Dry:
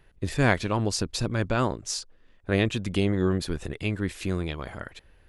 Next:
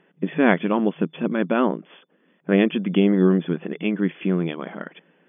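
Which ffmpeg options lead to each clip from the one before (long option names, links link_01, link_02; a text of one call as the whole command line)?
ffmpeg -i in.wav -af "afftfilt=real='re*between(b*sr/4096,160,3500)':imag='im*between(b*sr/4096,160,3500)':win_size=4096:overlap=0.75,lowshelf=frequency=420:gain=9,volume=2dB" out.wav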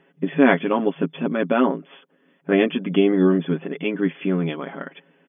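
ffmpeg -i in.wav -af "aecho=1:1:7.3:0.65" out.wav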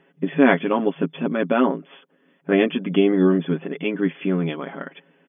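ffmpeg -i in.wav -af anull out.wav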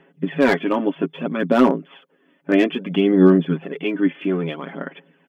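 ffmpeg -i in.wav -filter_complex "[0:a]aphaser=in_gain=1:out_gain=1:delay=3.4:decay=0.43:speed=0.61:type=sinusoidal,acrossover=split=410[link_01][link_02];[link_02]asoftclip=type=hard:threshold=-13dB[link_03];[link_01][link_03]amix=inputs=2:normalize=0" out.wav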